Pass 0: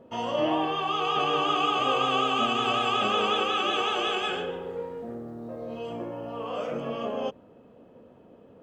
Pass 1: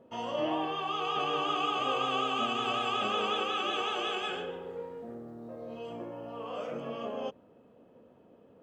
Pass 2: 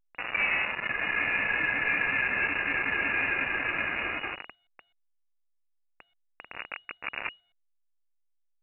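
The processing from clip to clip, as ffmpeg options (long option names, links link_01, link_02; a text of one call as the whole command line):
ffmpeg -i in.wav -af "lowshelf=frequency=87:gain=-5,volume=-5.5dB" out.wav
ffmpeg -i in.wav -af "acrusher=bits=4:mix=0:aa=0.000001,lowpass=frequency=2500:width_type=q:width=0.5098,lowpass=frequency=2500:width_type=q:width=0.6013,lowpass=frequency=2500:width_type=q:width=0.9,lowpass=frequency=2500:width_type=q:width=2.563,afreqshift=-2900,volume=3dB" -ar 8000 -c:a pcm_alaw out.wav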